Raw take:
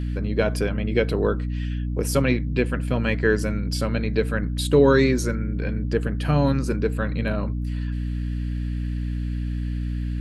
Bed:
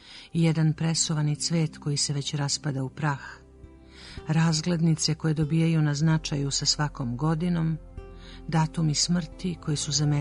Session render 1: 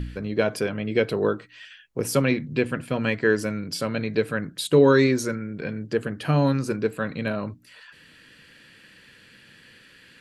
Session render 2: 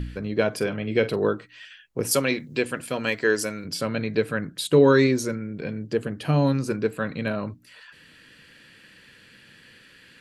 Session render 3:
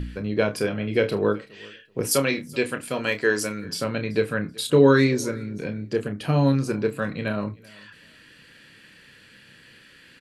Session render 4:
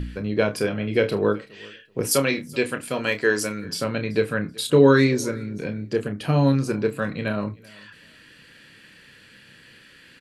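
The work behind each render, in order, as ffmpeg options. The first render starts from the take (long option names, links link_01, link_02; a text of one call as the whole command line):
ffmpeg -i in.wav -af "bandreject=frequency=60:width_type=h:width=4,bandreject=frequency=120:width_type=h:width=4,bandreject=frequency=180:width_type=h:width=4,bandreject=frequency=240:width_type=h:width=4,bandreject=frequency=300:width_type=h:width=4" out.wav
ffmpeg -i in.wav -filter_complex "[0:a]asettb=1/sr,asplit=3[link_01][link_02][link_03];[link_01]atrim=end=0.564[link_04];[link_02]atrim=start=0.56:end=1.16,asetpts=PTS-STARTPTS,afade=type=in:duration=0.004:curve=qsin,afade=type=out:start_time=0.596:duration=0.004:curve=qsin,asplit=2[link_05][link_06];[link_06]adelay=45,volume=-13.5dB[link_07];[link_05][link_07]amix=inputs=2:normalize=0,atrim=end_sample=26460[link_08];[link_03]atrim=start=1.156[link_09];[link_04][link_08]acrossfade=duration=0.004:curve1=hsin:curve2=qsin[link_10];[link_10][link_09]acrossfade=duration=0.004:curve1=qsin:curve2=hsin,asettb=1/sr,asplit=3[link_11][link_12][link_13];[link_11]atrim=end=2.114[link_14];[link_12]atrim=start=2.11:end=3.65,asetpts=PTS-STARTPTS,afade=type=in:duration=0.004:curve=qsin,afade=type=out:start_time=1.536:duration=0.004:curve=qsin,bass=frequency=250:gain=-9,treble=frequency=4000:gain=10[link_15];[link_13]atrim=start=3.646[link_16];[link_14][link_15]acrossfade=duration=0.004:curve1=hsin:curve2=qsin[link_17];[link_17][link_16]acrossfade=duration=0.004:curve1=qsin:curve2=hsin,asettb=1/sr,asplit=3[link_18][link_19][link_20];[link_18]atrim=end=5.074[link_21];[link_19]atrim=start=5.07:end=6.68,asetpts=PTS-STARTPTS,afade=type=in:duration=0.004:curve=qsin,afade=type=out:start_time=1.606:duration=0.004:curve=qsin,equalizer=frequency=1500:width=1.5:gain=-4.5[link_22];[link_20]atrim=start=6.676[link_23];[link_21][link_22]acrossfade=duration=0.004:curve1=hsin:curve2=qsin[link_24];[link_24][link_23]acrossfade=duration=0.004:curve1=qsin:curve2=hsin" out.wav
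ffmpeg -i in.wav -filter_complex "[0:a]asplit=2[link_01][link_02];[link_02]adelay=29,volume=-8.5dB[link_03];[link_01][link_03]amix=inputs=2:normalize=0,aecho=1:1:381|762:0.0631|0.0145" out.wav
ffmpeg -i in.wav -af "volume=1dB" out.wav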